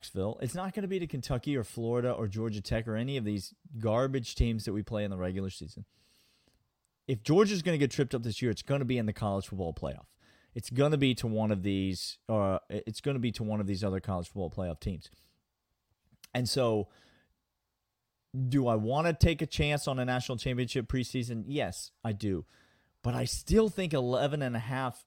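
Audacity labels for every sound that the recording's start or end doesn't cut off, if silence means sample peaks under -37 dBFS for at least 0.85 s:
7.090000	14.960000	sound
16.240000	16.830000	sound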